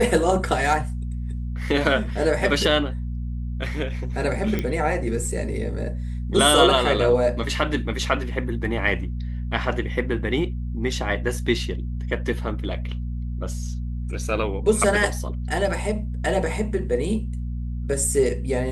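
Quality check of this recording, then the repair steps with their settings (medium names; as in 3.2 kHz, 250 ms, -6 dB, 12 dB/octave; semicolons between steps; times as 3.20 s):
hum 60 Hz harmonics 4 -28 dBFS
4.59 s: pop -12 dBFS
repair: de-click; de-hum 60 Hz, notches 4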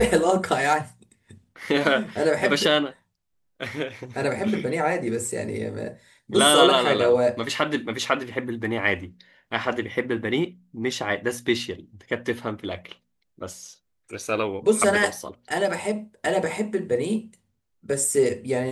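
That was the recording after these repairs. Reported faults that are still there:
nothing left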